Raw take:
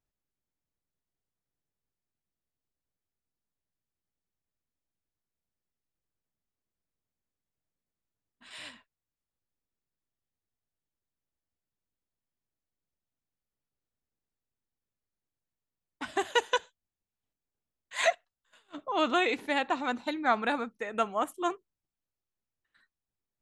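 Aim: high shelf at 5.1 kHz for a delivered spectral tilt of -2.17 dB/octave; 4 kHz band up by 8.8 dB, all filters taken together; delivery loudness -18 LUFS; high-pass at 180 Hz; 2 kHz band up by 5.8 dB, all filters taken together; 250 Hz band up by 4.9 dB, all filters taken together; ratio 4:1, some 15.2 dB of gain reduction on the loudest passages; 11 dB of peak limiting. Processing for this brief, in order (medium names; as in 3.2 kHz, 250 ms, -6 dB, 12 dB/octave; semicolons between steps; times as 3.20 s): high-pass 180 Hz; peaking EQ 250 Hz +7 dB; peaking EQ 2 kHz +4.5 dB; peaking EQ 4 kHz +7 dB; treble shelf 5.1 kHz +6.5 dB; compression 4:1, threshold -36 dBFS; trim +24 dB; peak limiter -6 dBFS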